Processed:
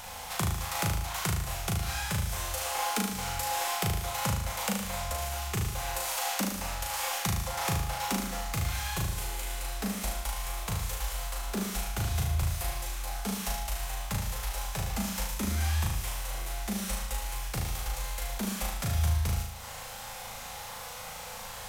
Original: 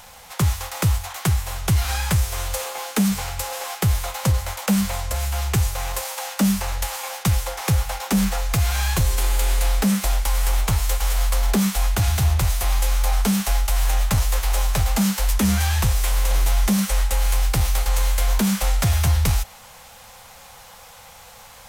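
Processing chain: compression 10:1, threshold -30 dBFS, peak gain reduction 15.5 dB; on a send: flutter echo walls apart 6.4 m, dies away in 0.74 s

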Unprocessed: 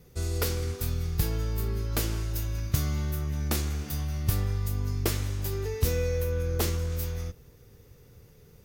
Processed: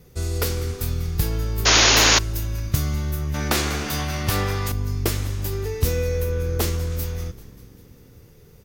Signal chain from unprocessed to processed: frequency-shifting echo 195 ms, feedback 63%, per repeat -68 Hz, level -18.5 dB; 1.65–2.19 s: painted sound noise 230–7000 Hz -20 dBFS; 3.34–4.72 s: overdrive pedal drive 20 dB, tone 3.1 kHz, clips at -11 dBFS; trim +4.5 dB

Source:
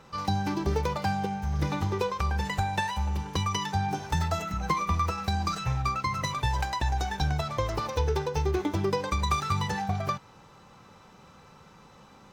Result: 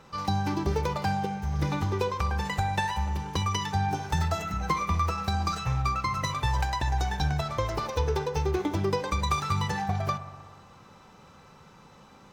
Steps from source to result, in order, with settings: bucket-brigade echo 62 ms, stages 1024, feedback 75%, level -15 dB

